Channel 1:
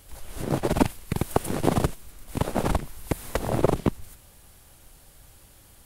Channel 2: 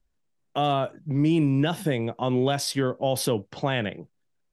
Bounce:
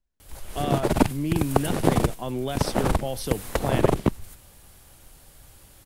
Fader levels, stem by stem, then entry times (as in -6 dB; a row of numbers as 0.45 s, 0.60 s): +1.5 dB, -6.0 dB; 0.20 s, 0.00 s